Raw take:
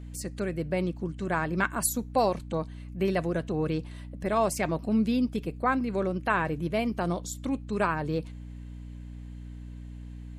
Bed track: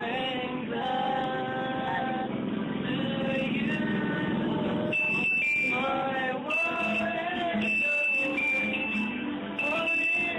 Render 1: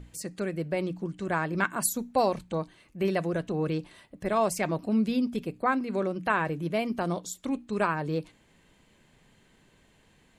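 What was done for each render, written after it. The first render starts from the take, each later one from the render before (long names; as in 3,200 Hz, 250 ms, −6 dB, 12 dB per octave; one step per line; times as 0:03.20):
mains-hum notches 60/120/180/240/300 Hz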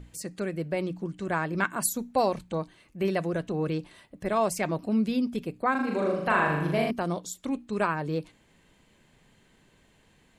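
0:05.71–0:06.91: flutter between parallel walls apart 6.8 metres, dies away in 0.89 s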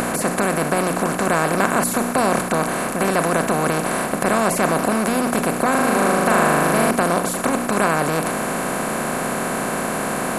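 compressor on every frequency bin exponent 0.2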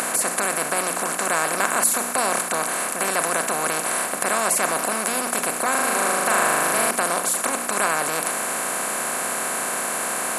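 high-pass filter 1,000 Hz 6 dB per octave
parametric band 8,900 Hz +6.5 dB 0.98 octaves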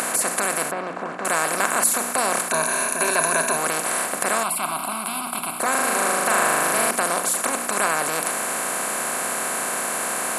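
0:00.71–0:01.25: head-to-tape spacing loss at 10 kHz 34 dB
0:02.51–0:03.57: EQ curve with evenly spaced ripples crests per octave 1.5, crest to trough 10 dB
0:04.43–0:05.60: phaser with its sweep stopped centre 1,800 Hz, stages 6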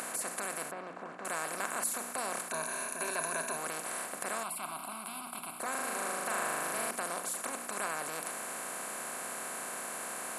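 level −14.5 dB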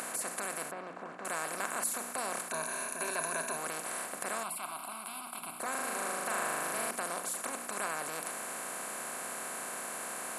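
0:04.57–0:05.42: low-shelf EQ 200 Hz −10 dB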